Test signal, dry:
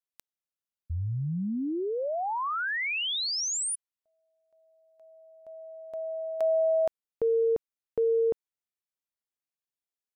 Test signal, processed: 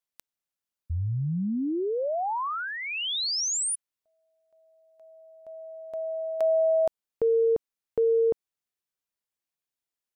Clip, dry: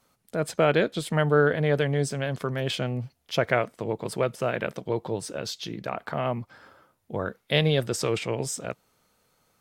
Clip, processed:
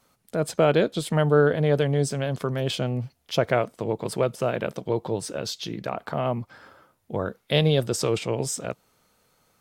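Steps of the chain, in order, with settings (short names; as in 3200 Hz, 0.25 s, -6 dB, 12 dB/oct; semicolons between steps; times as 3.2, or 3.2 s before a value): dynamic EQ 1900 Hz, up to -7 dB, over -43 dBFS, Q 1.4; gain +2.5 dB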